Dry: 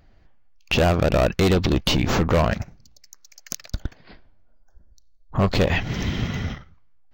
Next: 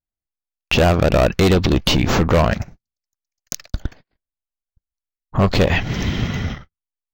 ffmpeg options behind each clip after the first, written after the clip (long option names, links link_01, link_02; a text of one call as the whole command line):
ffmpeg -i in.wav -af "agate=range=-43dB:threshold=-39dB:ratio=16:detection=peak,volume=4dB" out.wav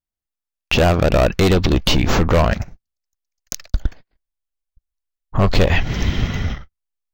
ffmpeg -i in.wav -af "asubboost=boost=2.5:cutoff=78" out.wav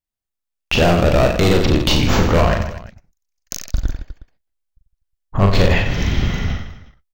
ffmpeg -i in.wav -af "aecho=1:1:40|92|159.6|247.5|361.7:0.631|0.398|0.251|0.158|0.1,volume=-1dB" out.wav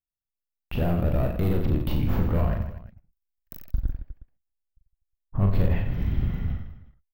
ffmpeg -i in.wav -af "firequalizer=gain_entry='entry(120,0);entry(420,-8);entry(6400,-28);entry(12000,-1)':delay=0.05:min_phase=1,volume=-6.5dB" out.wav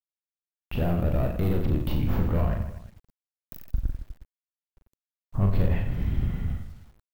ffmpeg -i in.wav -af "acrusher=bits=9:mix=0:aa=0.000001,volume=-1dB" out.wav